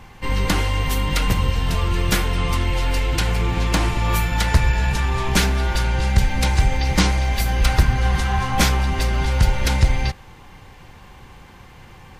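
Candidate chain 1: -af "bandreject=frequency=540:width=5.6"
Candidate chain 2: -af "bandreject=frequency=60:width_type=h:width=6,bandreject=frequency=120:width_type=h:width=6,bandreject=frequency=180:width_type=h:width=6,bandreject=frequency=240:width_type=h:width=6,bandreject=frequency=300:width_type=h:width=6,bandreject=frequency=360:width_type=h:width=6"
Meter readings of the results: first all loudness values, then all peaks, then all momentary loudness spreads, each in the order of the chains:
−20.5, −21.0 LKFS; −4.0, −4.5 dBFS; 3, 4 LU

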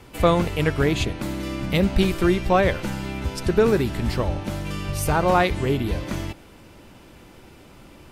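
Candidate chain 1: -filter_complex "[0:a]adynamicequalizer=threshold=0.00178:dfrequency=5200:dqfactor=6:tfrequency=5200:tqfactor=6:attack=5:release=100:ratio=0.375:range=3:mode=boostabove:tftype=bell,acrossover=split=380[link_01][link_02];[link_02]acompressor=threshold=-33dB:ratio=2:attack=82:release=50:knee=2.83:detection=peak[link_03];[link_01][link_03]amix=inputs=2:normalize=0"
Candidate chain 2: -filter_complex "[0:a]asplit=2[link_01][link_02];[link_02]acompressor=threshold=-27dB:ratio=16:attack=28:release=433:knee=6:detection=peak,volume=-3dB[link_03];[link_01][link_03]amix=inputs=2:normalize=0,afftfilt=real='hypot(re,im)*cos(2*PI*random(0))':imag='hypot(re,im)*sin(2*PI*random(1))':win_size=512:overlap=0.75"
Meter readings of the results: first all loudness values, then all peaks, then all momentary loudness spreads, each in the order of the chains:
−24.0, −27.0 LKFS; −6.5, −8.5 dBFS; 8, 9 LU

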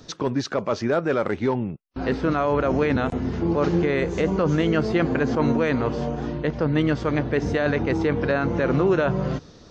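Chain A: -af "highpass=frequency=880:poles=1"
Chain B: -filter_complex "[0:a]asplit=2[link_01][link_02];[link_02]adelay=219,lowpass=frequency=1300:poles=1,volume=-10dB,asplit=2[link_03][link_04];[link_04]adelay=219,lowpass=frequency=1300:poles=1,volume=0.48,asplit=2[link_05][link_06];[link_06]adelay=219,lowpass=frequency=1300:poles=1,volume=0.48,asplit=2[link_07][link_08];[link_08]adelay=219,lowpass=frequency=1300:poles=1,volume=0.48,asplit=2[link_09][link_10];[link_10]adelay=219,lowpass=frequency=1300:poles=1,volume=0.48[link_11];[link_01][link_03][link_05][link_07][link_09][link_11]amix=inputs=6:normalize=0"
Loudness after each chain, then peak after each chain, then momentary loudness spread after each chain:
−29.5, −22.5 LKFS; −11.5, −9.0 dBFS; 8, 6 LU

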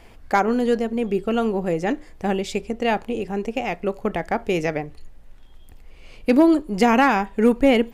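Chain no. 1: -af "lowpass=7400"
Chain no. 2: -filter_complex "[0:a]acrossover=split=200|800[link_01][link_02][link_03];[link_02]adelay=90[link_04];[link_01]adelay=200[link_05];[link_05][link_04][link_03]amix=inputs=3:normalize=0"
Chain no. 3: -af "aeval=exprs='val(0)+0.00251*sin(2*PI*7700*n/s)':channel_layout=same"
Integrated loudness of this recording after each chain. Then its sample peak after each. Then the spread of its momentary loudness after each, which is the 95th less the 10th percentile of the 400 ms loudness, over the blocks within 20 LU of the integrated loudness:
−21.5, −23.5, −21.5 LKFS; −7.0, −5.5, −7.0 dBFS; 11, 10, 11 LU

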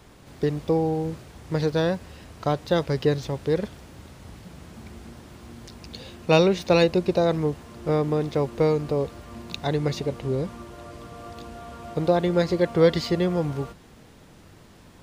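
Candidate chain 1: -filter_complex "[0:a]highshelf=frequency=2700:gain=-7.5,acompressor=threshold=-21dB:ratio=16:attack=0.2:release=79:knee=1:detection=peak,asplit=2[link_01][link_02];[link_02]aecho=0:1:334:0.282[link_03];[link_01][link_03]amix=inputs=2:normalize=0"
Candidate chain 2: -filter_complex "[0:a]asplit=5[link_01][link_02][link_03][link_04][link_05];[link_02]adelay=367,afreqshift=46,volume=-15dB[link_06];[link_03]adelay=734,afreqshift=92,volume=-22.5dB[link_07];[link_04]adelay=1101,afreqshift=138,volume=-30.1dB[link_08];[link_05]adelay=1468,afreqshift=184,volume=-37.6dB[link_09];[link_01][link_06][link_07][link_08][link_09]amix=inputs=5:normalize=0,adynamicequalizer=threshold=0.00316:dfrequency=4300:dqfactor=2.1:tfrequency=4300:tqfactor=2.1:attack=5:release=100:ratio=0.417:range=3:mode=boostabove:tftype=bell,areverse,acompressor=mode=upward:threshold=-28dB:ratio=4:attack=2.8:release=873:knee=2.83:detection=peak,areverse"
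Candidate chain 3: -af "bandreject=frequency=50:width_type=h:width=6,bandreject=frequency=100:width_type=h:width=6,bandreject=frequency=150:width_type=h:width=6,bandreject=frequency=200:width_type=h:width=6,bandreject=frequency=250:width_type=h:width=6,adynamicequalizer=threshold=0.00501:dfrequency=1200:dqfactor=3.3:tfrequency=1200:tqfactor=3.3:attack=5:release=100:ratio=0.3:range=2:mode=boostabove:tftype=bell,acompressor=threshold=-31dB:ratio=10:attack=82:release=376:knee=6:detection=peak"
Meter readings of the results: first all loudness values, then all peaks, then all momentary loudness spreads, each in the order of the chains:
−30.5, −24.0, −34.0 LKFS; −18.0, −4.0, −12.0 dBFS; 16, 19, 14 LU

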